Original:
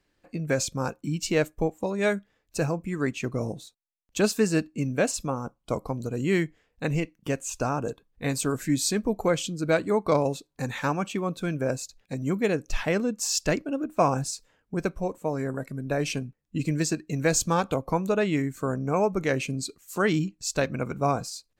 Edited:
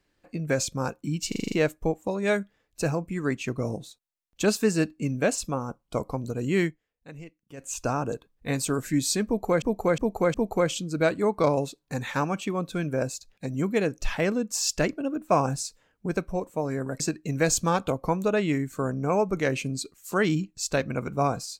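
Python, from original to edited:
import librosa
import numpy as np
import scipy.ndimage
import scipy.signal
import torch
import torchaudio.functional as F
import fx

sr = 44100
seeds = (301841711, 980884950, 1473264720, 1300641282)

y = fx.edit(x, sr, fx.stutter(start_s=1.28, slice_s=0.04, count=7),
    fx.fade_down_up(start_s=6.41, length_s=1.04, db=-16.0, fade_s=0.12),
    fx.repeat(start_s=9.02, length_s=0.36, count=4),
    fx.cut(start_s=15.68, length_s=1.16), tone=tone)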